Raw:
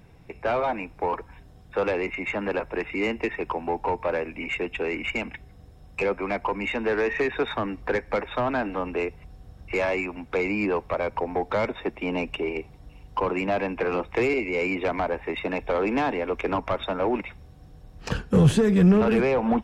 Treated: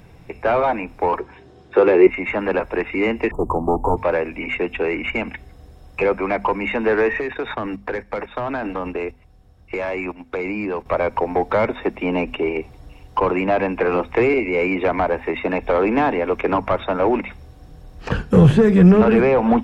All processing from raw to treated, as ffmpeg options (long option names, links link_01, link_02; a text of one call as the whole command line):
ffmpeg -i in.wav -filter_complex "[0:a]asettb=1/sr,asplit=3[link_01][link_02][link_03];[link_01]atrim=end=1.204[link_04];[link_02]atrim=start=1.2:end=2.07,asetpts=PTS-STARTPTS,afade=type=in:duration=0.004:curve=qsin,afade=type=out:start_time=0.866:duration=0.004:curve=qsin,highpass=110,lowpass=5900,equalizer=frequency=370:width=4.4:gain=14,asplit=2[link_05][link_06];[link_06]adelay=16,volume=-13dB[link_07];[link_05][link_07]amix=inputs=2:normalize=0,atrim=end_sample=38367[link_08];[link_03]atrim=start=2.066[link_09];[link_04][link_08]acrossfade=duration=0.004:curve1=hsin:curve2=qsin[link_10];[link_10][link_09]acrossfade=duration=0.004:curve1=qsin:curve2=hsin,asettb=1/sr,asplit=3[link_11][link_12][link_13];[link_11]atrim=end=3.314[link_14];[link_12]atrim=start=3.31:end=3.97,asetpts=PTS-STARTPTS,afade=type=in:duration=0.004:curve=qsin,afade=type=out:start_time=0.656:duration=0.004:curve=qsin,lowshelf=frequency=300:gain=12,aeval=exprs='clip(val(0),-1,0.0501)':channel_layout=same,asuperstop=centerf=3000:order=20:qfactor=0.51[link_15];[link_13]atrim=start=3.966[link_16];[link_14][link_15]acrossfade=duration=0.004:curve1=hsin:curve2=qsin[link_17];[link_17][link_16]acrossfade=duration=0.004:curve1=qsin:curve2=hsin,asettb=1/sr,asplit=3[link_18][link_19][link_20];[link_18]atrim=end=7.194[link_21];[link_19]atrim=start=7.19:end=10.86,asetpts=PTS-STARTPTS,afade=type=in:duration=0.004:curve=qsin,afade=type=out:start_time=3.666:duration=0.004:curve=qsin,agate=range=-11dB:threshold=-35dB:ratio=16:release=100:detection=peak,acompressor=threshold=-28dB:ratio=5:attack=3.2:release=140:knee=1:detection=peak[link_22];[link_20]atrim=start=10.856[link_23];[link_21][link_22]acrossfade=duration=0.004:curve1=hsin:curve2=qsin[link_24];[link_24][link_23]acrossfade=duration=0.004:curve1=qsin:curve2=hsin,acrossover=split=2700[link_25][link_26];[link_26]acompressor=threshold=-50dB:ratio=4:attack=1:release=60[link_27];[link_25][link_27]amix=inputs=2:normalize=0,bandreject=frequency=50:width_type=h:width=6,bandreject=frequency=100:width_type=h:width=6,bandreject=frequency=150:width_type=h:width=6,bandreject=frequency=200:width_type=h:width=6,bandreject=frequency=250:width_type=h:width=6,volume=7dB" out.wav